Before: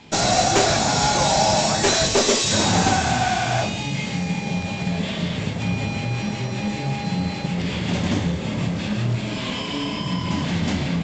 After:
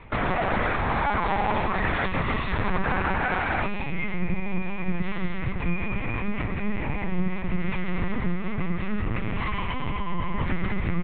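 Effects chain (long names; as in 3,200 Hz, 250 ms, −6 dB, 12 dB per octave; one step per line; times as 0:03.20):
loudspeaker in its box 180–2,500 Hz, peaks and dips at 190 Hz +8 dB, 340 Hz +7 dB, 500 Hz −7 dB, 740 Hz −4 dB, 1,100 Hz +8 dB, 2,000 Hz +6 dB
mains-hum notches 50/100/150/200/250/300/350/400/450/500 Hz
single-tap delay 115 ms −16 dB
reversed playback
upward compression, threshold −22 dBFS
reversed playback
dynamic equaliser 450 Hz, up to −6 dB, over −33 dBFS, Q 0.83
bad sample-rate conversion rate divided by 6×, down none, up hold
brickwall limiter −16.5 dBFS, peak gain reduction 7 dB
on a send at −21 dB: convolution reverb RT60 0.75 s, pre-delay 5 ms
on the sum: linear-prediction vocoder at 8 kHz pitch kept
level +1 dB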